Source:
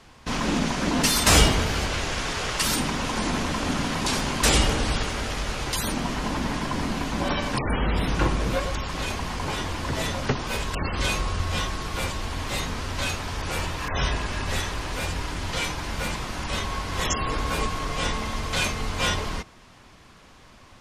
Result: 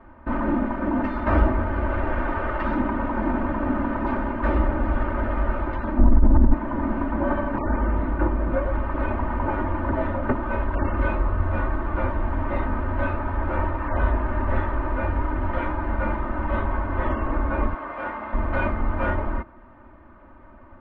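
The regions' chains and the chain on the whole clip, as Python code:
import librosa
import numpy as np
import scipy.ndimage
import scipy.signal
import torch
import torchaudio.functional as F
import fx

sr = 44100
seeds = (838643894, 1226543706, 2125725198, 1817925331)

y = fx.chain(x, sr, fx.tilt_eq(slope=-4.5),
    fx.over_compress(threshold_db=-14.0, ratio=-1.0), at=(5.98, 6.54))
y = fx.chain(y, sr, fx.highpass(hz=860.0, slope=6),
    fx.high_shelf(hz=7300.0, db=-7.5), at=(17.74, 18.33))
y = scipy.signal.sosfilt(scipy.signal.butter(4, 1500.0, 'lowpass', fs=sr, output='sos'), y)
y = fx.rider(y, sr, range_db=3, speed_s=0.5)
y = y + 0.92 * np.pad(y, (int(3.3 * sr / 1000.0), 0))[:len(y)]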